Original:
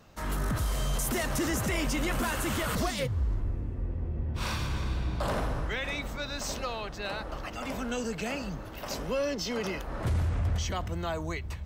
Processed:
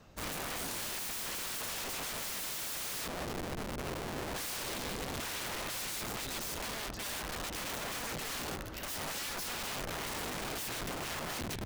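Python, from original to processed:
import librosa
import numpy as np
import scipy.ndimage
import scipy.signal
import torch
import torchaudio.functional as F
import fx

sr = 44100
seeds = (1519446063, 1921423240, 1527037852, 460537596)

y = fx.rotary(x, sr, hz=0.65)
y = (np.mod(10.0 ** (35.5 / 20.0) * y + 1.0, 2.0) - 1.0) / 10.0 ** (35.5 / 20.0)
y = y * librosa.db_to_amplitude(1.5)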